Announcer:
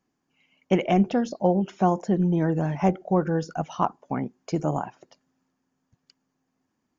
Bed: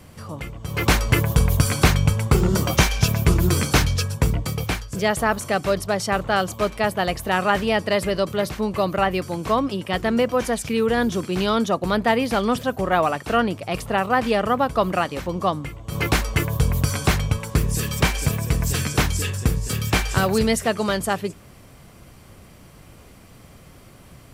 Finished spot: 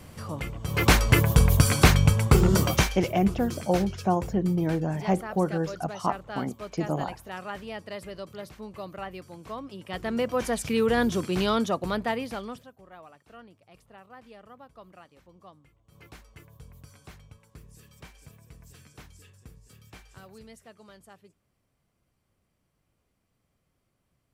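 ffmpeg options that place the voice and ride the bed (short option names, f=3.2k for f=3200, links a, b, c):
-filter_complex "[0:a]adelay=2250,volume=-3dB[a];[1:a]volume=13dB,afade=t=out:st=2.6:d=0.42:silence=0.158489,afade=t=in:st=9.68:d=1.06:silence=0.199526,afade=t=out:st=11.36:d=1.35:silence=0.0501187[b];[a][b]amix=inputs=2:normalize=0"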